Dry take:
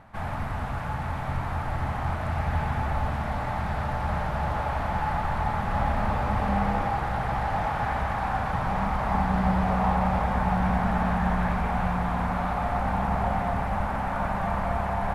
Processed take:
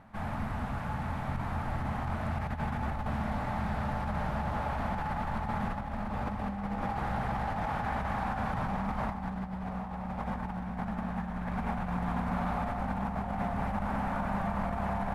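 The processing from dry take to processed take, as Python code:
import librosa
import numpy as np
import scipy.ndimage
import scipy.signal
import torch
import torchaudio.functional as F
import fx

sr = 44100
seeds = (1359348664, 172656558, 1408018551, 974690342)

y = fx.over_compress(x, sr, threshold_db=-27.0, ratio=-0.5)
y = fx.peak_eq(y, sr, hz=220.0, db=8.0, octaves=0.55)
y = y * librosa.db_to_amplitude(-6.5)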